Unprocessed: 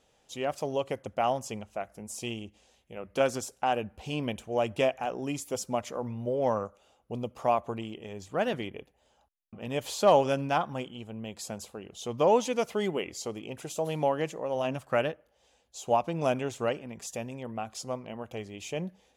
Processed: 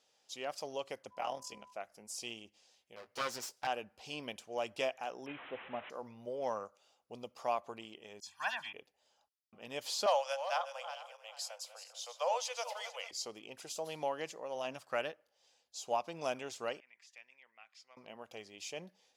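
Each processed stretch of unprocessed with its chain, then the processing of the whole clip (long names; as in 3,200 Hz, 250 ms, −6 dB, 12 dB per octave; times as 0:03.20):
0:01.10–0:01.72: amplitude modulation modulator 40 Hz, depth 75% + steady tone 1,000 Hz −53 dBFS + double-tracking delay 15 ms −6.5 dB
0:02.96–0:03.67: lower of the sound and its delayed copy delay 8.1 ms + double-tracking delay 17 ms −12 dB
0:05.26–0:05.90: linear delta modulator 16 kbit/s, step −36.5 dBFS + bad sample-rate conversion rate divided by 6×, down none, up filtered
0:08.20–0:08.73: low shelf with overshoot 720 Hz −13.5 dB, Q 3 + comb filter 1.2 ms, depth 83% + all-pass dispersion lows, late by 70 ms, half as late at 3,000 Hz
0:10.06–0:13.11: feedback delay that plays each chunk backwards 223 ms, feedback 47%, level −10.5 dB + Butterworth high-pass 500 Hz 96 dB per octave
0:16.80–0:17.97: resonant band-pass 2,100 Hz, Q 3.7 + hard clipping −35.5 dBFS
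whole clip: high-pass filter 670 Hz 6 dB per octave; parametric band 4,900 Hz +9.5 dB 0.58 octaves; level −6 dB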